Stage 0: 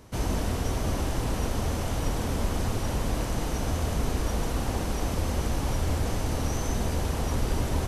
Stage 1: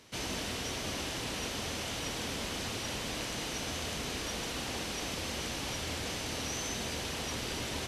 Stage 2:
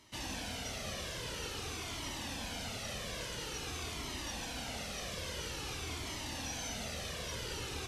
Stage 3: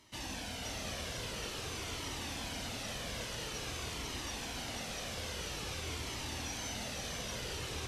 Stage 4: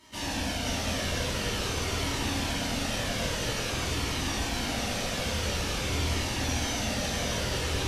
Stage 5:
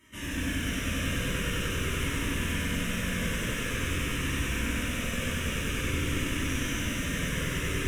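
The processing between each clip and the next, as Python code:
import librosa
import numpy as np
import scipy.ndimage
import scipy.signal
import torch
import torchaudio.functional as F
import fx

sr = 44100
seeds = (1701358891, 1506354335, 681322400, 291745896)

y1 = fx.weighting(x, sr, curve='D')
y1 = y1 * 10.0 ** (-7.0 / 20.0)
y2 = fx.comb_cascade(y1, sr, direction='falling', hz=0.49)
y3 = y2 + 10.0 ** (-4.5 / 20.0) * np.pad(y2, (int(492 * sr / 1000.0), 0))[:len(y2)]
y3 = y3 * 10.0 ** (-1.0 / 20.0)
y4 = fx.room_shoebox(y3, sr, seeds[0], volume_m3=220.0, walls='mixed', distance_m=2.7)
y4 = y4 * 10.0 ** (1.5 / 20.0)
y5 = fx.fixed_phaser(y4, sr, hz=1900.0, stages=4)
y5 = fx.echo_crushed(y5, sr, ms=96, feedback_pct=80, bits=9, wet_db=-3.5)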